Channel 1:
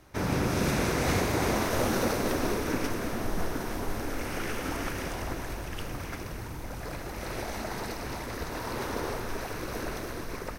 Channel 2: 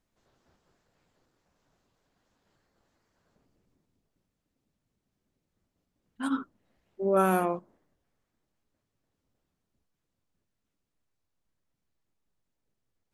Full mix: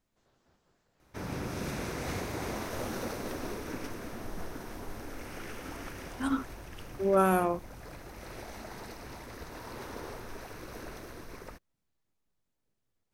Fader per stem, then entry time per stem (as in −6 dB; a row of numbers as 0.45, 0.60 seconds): −9.0, −0.5 decibels; 1.00, 0.00 seconds